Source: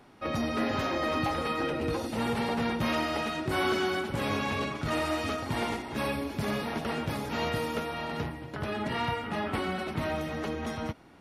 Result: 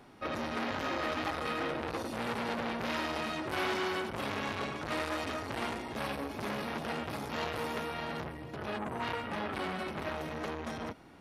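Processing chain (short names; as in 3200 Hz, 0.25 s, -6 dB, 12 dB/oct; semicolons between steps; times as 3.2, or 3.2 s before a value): spectral gain 8.78–9.03, 1100–6000 Hz -17 dB; core saturation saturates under 2000 Hz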